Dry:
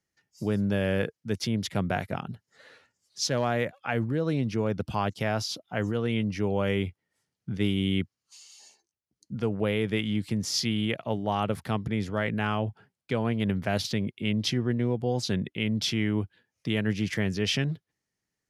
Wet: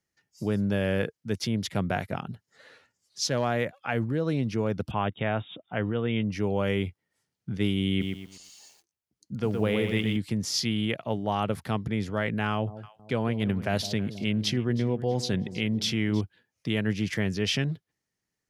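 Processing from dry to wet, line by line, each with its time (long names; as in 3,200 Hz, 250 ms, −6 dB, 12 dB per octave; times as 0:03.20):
0:04.91–0:06.31: linear-phase brick-wall low-pass 3,800 Hz
0:07.89–0:10.17: feedback echo at a low word length 119 ms, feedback 35%, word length 9 bits, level −5 dB
0:12.51–0:16.21: delay that swaps between a low-pass and a high-pass 160 ms, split 810 Hz, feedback 58%, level −13 dB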